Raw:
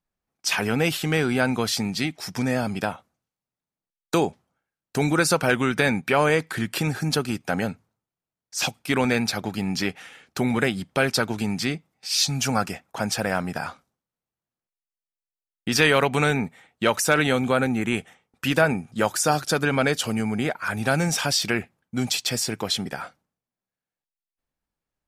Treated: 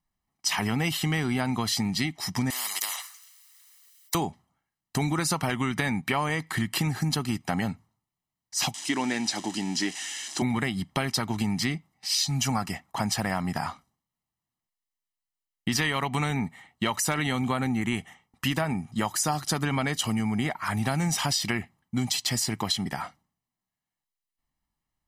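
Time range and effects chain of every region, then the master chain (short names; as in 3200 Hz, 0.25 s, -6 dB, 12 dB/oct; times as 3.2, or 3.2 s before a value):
2.5–4.15 HPF 1300 Hz 24 dB/oct + high shelf 3500 Hz +10.5 dB + spectral compressor 10:1
8.74–10.42 switching spikes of -22 dBFS + speaker cabinet 300–7700 Hz, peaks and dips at 310 Hz +7 dB, 450 Hz -3 dB, 750 Hz -3 dB, 1200 Hz -9 dB, 2200 Hz -5 dB, 4300 Hz -4 dB
whole clip: comb 1 ms, depth 65%; compressor, threshold -23 dBFS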